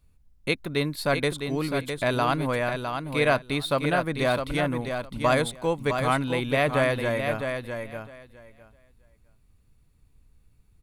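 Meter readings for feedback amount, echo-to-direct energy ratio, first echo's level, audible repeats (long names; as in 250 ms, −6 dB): 15%, −6.5 dB, −6.5 dB, 2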